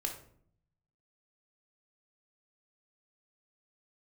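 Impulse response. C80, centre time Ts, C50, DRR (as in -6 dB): 12.0 dB, 20 ms, 8.0 dB, 2.5 dB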